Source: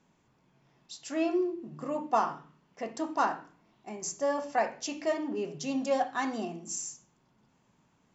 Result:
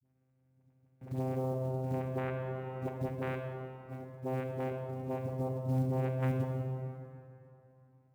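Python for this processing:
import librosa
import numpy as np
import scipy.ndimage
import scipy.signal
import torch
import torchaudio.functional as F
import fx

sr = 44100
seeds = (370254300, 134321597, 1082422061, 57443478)

y = scipy.signal.sosfilt(scipy.signal.butter(4, 1100.0, 'lowpass', fs=sr, output='sos'), x)
y = fx.level_steps(y, sr, step_db=11)
y = fx.vocoder(y, sr, bands=4, carrier='saw', carrier_hz=130.0)
y = fx.dispersion(y, sr, late='highs', ms=45.0, hz=370.0)
y = fx.quant_float(y, sr, bits=4)
y = fx.rev_plate(y, sr, seeds[0], rt60_s=2.9, hf_ratio=0.65, predelay_ms=0, drr_db=2.5)
y = fx.band_squash(y, sr, depth_pct=70, at=(1.01, 3.09))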